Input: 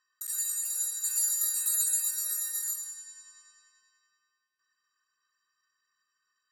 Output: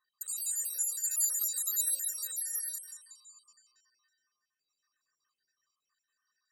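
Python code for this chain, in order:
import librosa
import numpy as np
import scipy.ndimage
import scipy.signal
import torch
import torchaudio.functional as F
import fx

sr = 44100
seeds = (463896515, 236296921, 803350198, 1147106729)

y = fx.spec_dropout(x, sr, seeds[0], share_pct=48)
y = fx.filter_lfo_notch(y, sr, shape='sine', hz=7.8, low_hz=960.0, high_hz=2400.0, q=1.7)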